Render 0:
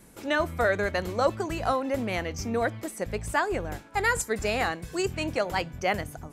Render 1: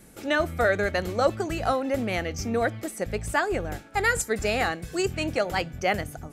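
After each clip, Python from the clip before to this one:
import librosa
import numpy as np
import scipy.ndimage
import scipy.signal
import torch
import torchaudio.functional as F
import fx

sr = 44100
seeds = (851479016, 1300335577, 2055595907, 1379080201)

y = fx.notch(x, sr, hz=1000.0, q=6.0)
y = y * 10.0 ** (2.0 / 20.0)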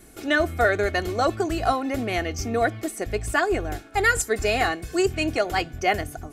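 y = x + 0.54 * np.pad(x, (int(2.8 * sr / 1000.0), 0))[:len(x)]
y = y * 10.0 ** (1.5 / 20.0)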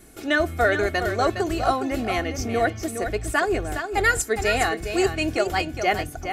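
y = x + 10.0 ** (-8.0 / 20.0) * np.pad(x, (int(412 * sr / 1000.0), 0))[:len(x)]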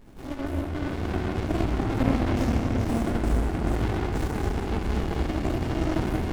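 y = fx.over_compress(x, sr, threshold_db=-26.0, ratio=-0.5)
y = fx.room_shoebox(y, sr, seeds[0], volume_m3=210.0, walls='hard', distance_m=1.4)
y = fx.running_max(y, sr, window=65)
y = y * 10.0 ** (-7.0 / 20.0)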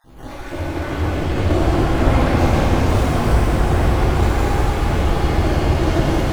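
y = fx.spec_dropout(x, sr, seeds[1], share_pct=34)
y = fx.peak_eq(y, sr, hz=230.0, db=-6.0, octaves=0.74)
y = fx.rev_shimmer(y, sr, seeds[2], rt60_s=3.7, semitones=7, shimmer_db=-8, drr_db=-7.0)
y = y * 10.0 ** (4.0 / 20.0)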